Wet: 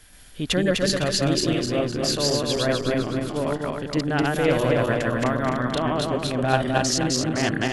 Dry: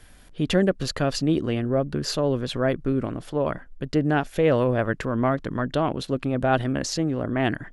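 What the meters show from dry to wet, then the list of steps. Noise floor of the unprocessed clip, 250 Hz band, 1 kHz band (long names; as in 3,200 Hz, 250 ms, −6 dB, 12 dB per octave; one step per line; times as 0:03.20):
−49 dBFS, +0.5 dB, +2.0 dB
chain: feedback delay that plays each chunk backwards 128 ms, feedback 66%, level 0 dB
high-shelf EQ 2,200 Hz +9.5 dB
level −4 dB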